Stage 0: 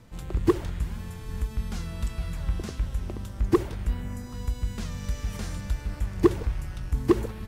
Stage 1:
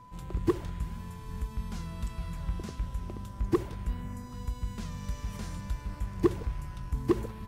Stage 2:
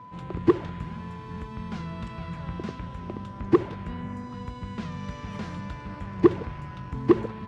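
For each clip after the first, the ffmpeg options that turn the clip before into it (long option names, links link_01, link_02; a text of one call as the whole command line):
ffmpeg -i in.wav -af "aeval=exprs='val(0)+0.00562*sin(2*PI*1000*n/s)':channel_layout=same,equalizer=frequency=160:width=1.4:gain=4,volume=-6dB" out.wav
ffmpeg -i in.wav -af "highpass=130,lowpass=3100,volume=7.5dB" out.wav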